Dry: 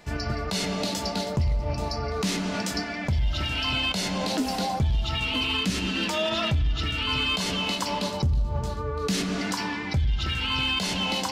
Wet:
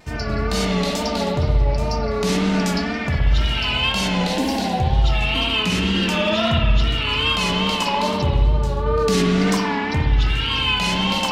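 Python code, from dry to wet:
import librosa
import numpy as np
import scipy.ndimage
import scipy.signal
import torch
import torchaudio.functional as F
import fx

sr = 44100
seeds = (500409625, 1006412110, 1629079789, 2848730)

y = fx.rev_spring(x, sr, rt60_s=1.6, pass_ms=(59,), chirp_ms=75, drr_db=-2.0)
y = fx.wow_flutter(y, sr, seeds[0], rate_hz=2.1, depth_cents=61.0)
y = fx.notch(y, sr, hz=1300.0, q=5.8, at=(4.32, 4.96))
y = fx.env_flatten(y, sr, amount_pct=70, at=(8.86, 9.57))
y = y * 10.0 ** (2.5 / 20.0)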